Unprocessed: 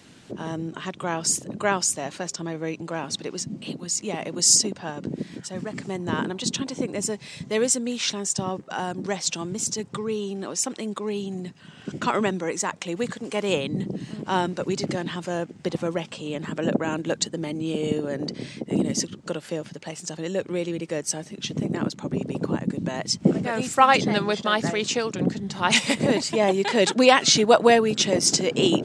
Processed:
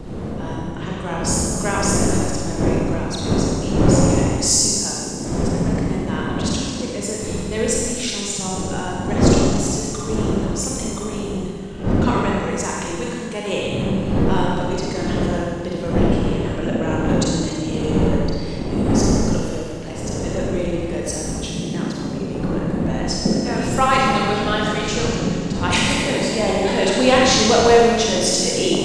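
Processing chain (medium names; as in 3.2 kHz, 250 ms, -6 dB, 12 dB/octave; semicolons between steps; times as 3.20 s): wind noise 300 Hz -25 dBFS; Schroeder reverb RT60 1.9 s, combs from 32 ms, DRR -3.5 dB; trim -2.5 dB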